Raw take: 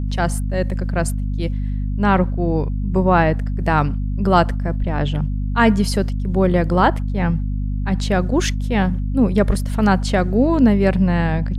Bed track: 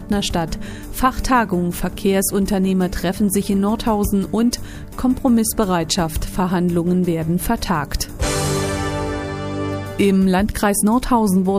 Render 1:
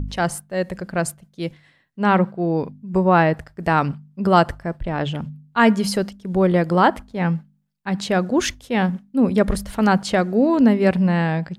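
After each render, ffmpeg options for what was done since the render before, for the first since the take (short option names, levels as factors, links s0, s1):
-af "bandreject=f=50:t=h:w=4,bandreject=f=100:t=h:w=4,bandreject=f=150:t=h:w=4,bandreject=f=200:t=h:w=4,bandreject=f=250:t=h:w=4"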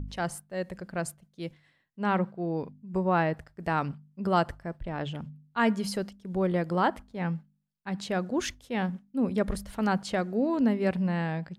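-af "volume=0.316"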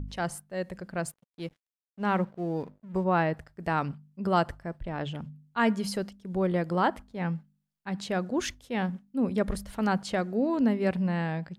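-filter_complex "[0:a]asettb=1/sr,asplit=3[s0][s1][s2];[s0]atrim=end=1.064[s3];[s1]atrim=start=1.06:end=3.04,asetpts=PTS-STARTPTS,afade=t=in:d=0.004:c=qsin,afade=t=out:st=1.976:d=0.004:c=qsin,aeval=exprs='sgn(val(0))*max(abs(val(0))-0.00178,0)':c=same[s4];[s2]atrim=start=3.036[s5];[s3][s4]acrossfade=d=0.004:c1=hsin:c2=qsin[s6];[s6][s5]acrossfade=d=0.004:c1=qsin:c2=hsin"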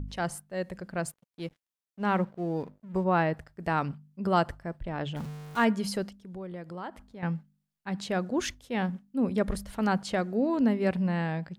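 -filter_complex "[0:a]asettb=1/sr,asplit=3[s0][s1][s2];[s0]atrim=end=5.164[s3];[s1]atrim=start=5.16:end=5.65,asetpts=PTS-STARTPTS,afade=t=in:d=0.004:c=qsin,afade=t=out:st=0.486:d=0.004:c=qsin,aeval=exprs='val(0)+0.5*0.0126*sgn(val(0))':c=same[s4];[s2]atrim=start=5.646[s5];[s3][s4]acrossfade=d=0.004:c1=hsin:c2=qsin[s6];[s6][s5]acrossfade=d=0.004:c1=qsin:c2=hsin,asettb=1/sr,asplit=3[s7][s8][s9];[s7]atrim=end=6.234[s10];[s8]atrim=start=6.23:end=7.23,asetpts=PTS-STARTPTS,afade=t=in:d=0.004:c=qsin,afade=t=out:st=0.996:d=0.004:c=qsin,acompressor=threshold=0.00501:ratio=2:attack=3.2:release=140:knee=1:detection=peak[s11];[s9]atrim=start=7.226[s12];[s10][s11]acrossfade=d=0.004:c1=hsin:c2=qsin[s13];[s13][s12]acrossfade=d=0.004:c1=qsin:c2=hsin"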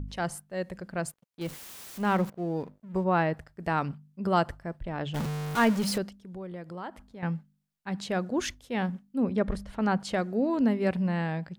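-filter_complex "[0:a]asettb=1/sr,asplit=3[s0][s1][s2];[s0]atrim=end=1.414[s3];[s1]atrim=start=1.41:end=2.3,asetpts=PTS-STARTPTS,afade=t=in:d=0.004:c=qsin,afade=t=out:st=0.886:d=0.004:c=qsin,aeval=exprs='val(0)+0.5*0.0168*sgn(val(0))':c=same[s4];[s2]atrim=start=2.296[s5];[s3][s4]acrossfade=d=0.004:c1=hsin:c2=qsin[s6];[s6][s5]acrossfade=d=0.004:c1=qsin:c2=hsin,asettb=1/sr,asplit=3[s7][s8][s9];[s7]atrim=end=5.144[s10];[s8]atrim=start=5.14:end=5.98,asetpts=PTS-STARTPTS,afade=t=in:d=0.004:c=qsin,afade=t=out:st=0.836:d=0.004:c=qsin,aeval=exprs='val(0)+0.5*0.0299*sgn(val(0))':c=same[s11];[s9]atrim=start=5.976[s12];[s10][s11]acrossfade=d=0.004:c1=hsin:c2=qsin[s13];[s13][s12]acrossfade=d=0.004:c1=qsin:c2=hsin,asettb=1/sr,asplit=3[s14][s15][s16];[s14]atrim=end=9.234[s17];[s15]atrim=start=9.23:end=10,asetpts=PTS-STARTPTS,afade=t=in:d=0.004:c=qsin,afade=t=out:st=0.766:d=0.004:c=qsin,aemphasis=mode=reproduction:type=50fm[s18];[s16]atrim=start=9.996[s19];[s17][s18]acrossfade=d=0.004:c1=hsin:c2=qsin[s20];[s20][s19]acrossfade=d=0.004:c1=qsin:c2=hsin"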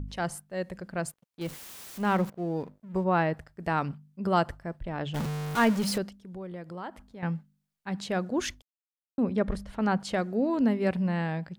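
-filter_complex "[0:a]asplit=3[s0][s1][s2];[s0]atrim=end=8.62,asetpts=PTS-STARTPTS,afade=t=out:st=8.616:d=0.004:c=hsin[s3];[s1]atrim=start=8.62:end=9.18,asetpts=PTS-STARTPTS,volume=0[s4];[s2]atrim=start=9.18,asetpts=PTS-STARTPTS,afade=t=in:d=0.004:c=hsin[s5];[s3][s4][s5]concat=n=3:v=0:a=1"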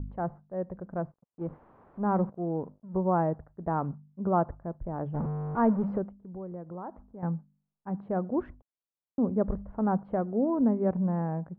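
-af "lowpass=f=1100:w=0.5412,lowpass=f=1100:w=1.3066"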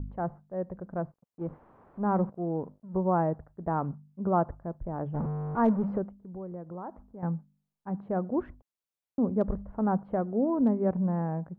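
-af "asoftclip=type=hard:threshold=0.168"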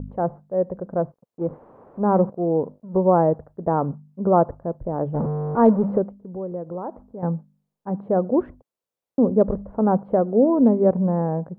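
-af "equalizer=f=125:t=o:w=1:g=5,equalizer=f=250:t=o:w=1:g=5,equalizer=f=500:t=o:w=1:g=12,equalizer=f=1000:t=o:w=1:g=4"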